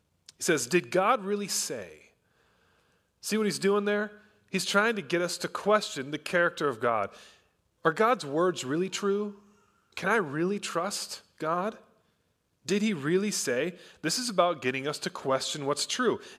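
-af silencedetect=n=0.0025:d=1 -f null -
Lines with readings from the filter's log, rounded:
silence_start: 2.08
silence_end: 3.23 | silence_duration: 1.15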